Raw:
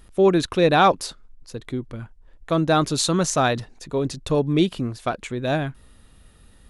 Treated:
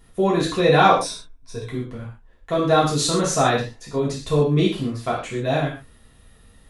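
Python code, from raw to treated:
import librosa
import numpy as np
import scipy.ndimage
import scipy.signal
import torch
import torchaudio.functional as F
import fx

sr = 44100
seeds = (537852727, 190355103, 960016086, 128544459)

y = fx.ripple_eq(x, sr, per_octave=1.6, db=12, at=(0.93, 1.67))
y = fx.rev_gated(y, sr, seeds[0], gate_ms=170, shape='falling', drr_db=-7.0)
y = y * librosa.db_to_amplitude(-6.0)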